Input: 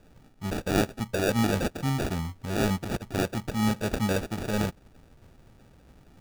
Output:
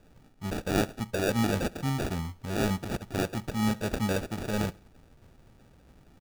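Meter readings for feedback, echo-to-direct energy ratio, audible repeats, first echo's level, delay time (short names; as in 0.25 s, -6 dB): 40%, -22.5 dB, 2, -23.0 dB, 69 ms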